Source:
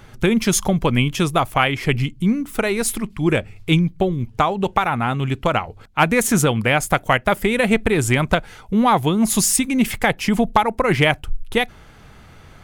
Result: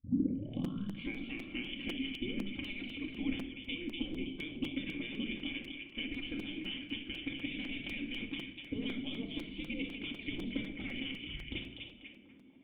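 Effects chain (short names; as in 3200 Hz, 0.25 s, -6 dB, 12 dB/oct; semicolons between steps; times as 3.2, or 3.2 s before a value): tape start at the beginning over 1.74 s; gate -32 dBFS, range -15 dB; spectral gate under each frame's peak -15 dB weak; dynamic EQ 1000 Hz, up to -5 dB, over -43 dBFS, Q 1.3; compressor, threshold -34 dBFS, peak gain reduction 14 dB; vocal tract filter i; delay with a stepping band-pass 0.245 s, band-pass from 3200 Hz, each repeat -0.7 oct, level -3 dB; shoebox room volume 2000 m³, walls furnished, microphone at 2.2 m; crackling interface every 0.25 s, samples 256, repeat, from 0.64; gain +9 dB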